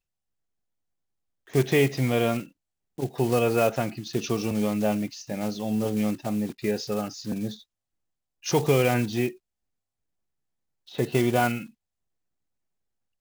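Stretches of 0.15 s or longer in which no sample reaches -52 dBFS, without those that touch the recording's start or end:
2.51–2.98
7.63–8.43
9.37–10.87

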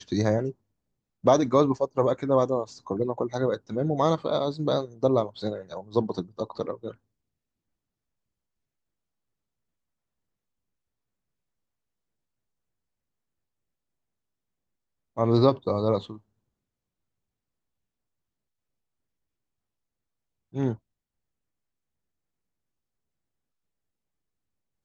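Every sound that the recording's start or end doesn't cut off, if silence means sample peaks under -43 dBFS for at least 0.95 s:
15.17–16.18
20.54–20.76

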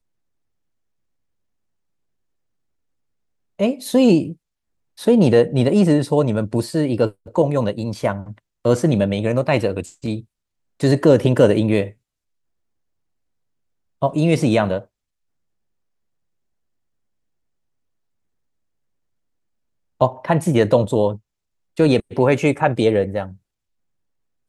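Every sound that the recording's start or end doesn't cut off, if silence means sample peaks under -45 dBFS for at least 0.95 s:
3.59–11.93
14.02–14.85
20–23.37

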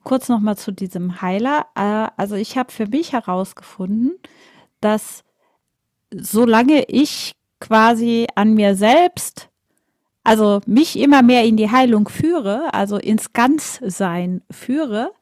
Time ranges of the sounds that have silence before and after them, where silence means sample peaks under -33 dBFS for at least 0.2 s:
4.83–5.18
6.12–7.31
7.62–9.42

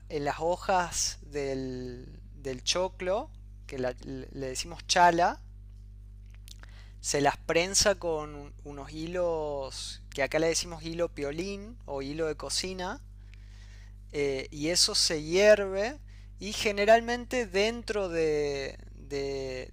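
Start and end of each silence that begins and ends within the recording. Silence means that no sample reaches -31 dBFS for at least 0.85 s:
5.33–6.48
12.93–14.15

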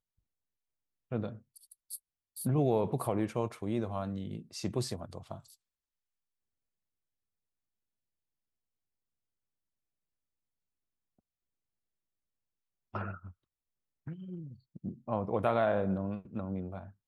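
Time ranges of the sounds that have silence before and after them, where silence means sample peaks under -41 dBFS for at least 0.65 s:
1.12–5.38
12.95–13.28

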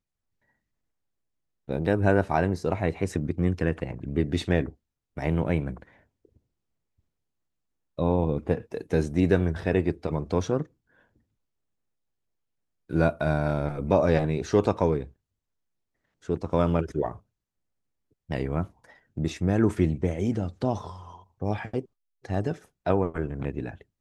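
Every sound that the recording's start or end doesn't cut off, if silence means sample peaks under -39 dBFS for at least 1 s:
1.69–5.83
7.99–10.64
12.9–15.07
16.29–17.17

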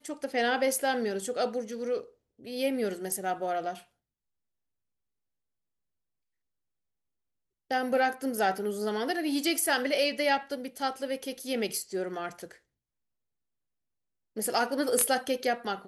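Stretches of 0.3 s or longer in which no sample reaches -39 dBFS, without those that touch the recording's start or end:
2.04–2.46
3.79–7.71
12.51–14.37

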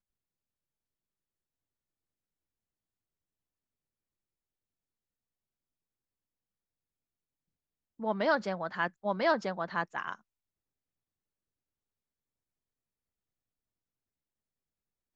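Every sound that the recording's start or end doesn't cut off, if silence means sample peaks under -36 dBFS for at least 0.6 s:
8.01–10.15

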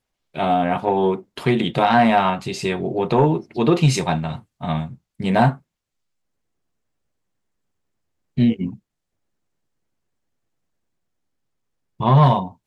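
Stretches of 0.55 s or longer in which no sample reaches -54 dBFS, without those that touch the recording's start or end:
5.62–8.37
8.79–12

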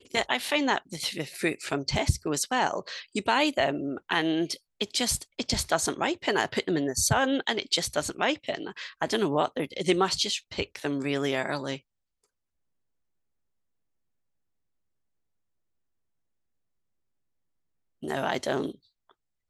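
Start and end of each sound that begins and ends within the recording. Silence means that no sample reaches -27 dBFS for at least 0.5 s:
18.05–18.7

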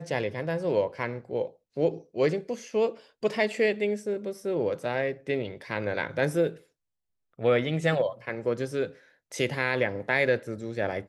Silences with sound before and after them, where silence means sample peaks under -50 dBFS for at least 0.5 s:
6.62–7.39

